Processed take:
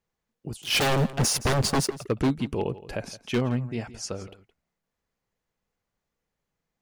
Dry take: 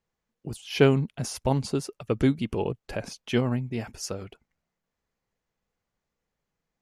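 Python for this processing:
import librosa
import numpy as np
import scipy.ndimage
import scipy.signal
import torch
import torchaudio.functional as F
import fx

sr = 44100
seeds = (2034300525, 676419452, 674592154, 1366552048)

y = fx.leveller(x, sr, passes=3, at=(0.62, 1.95))
y = fx.lowpass(y, sr, hz=9700.0, slope=24, at=(3.32, 4.24))
y = 10.0 ** (-16.5 / 20.0) * (np.abs((y / 10.0 ** (-16.5 / 20.0) + 3.0) % 4.0 - 2.0) - 1.0)
y = y + 10.0 ** (-17.0 / 20.0) * np.pad(y, (int(168 * sr / 1000.0), 0))[:len(y)]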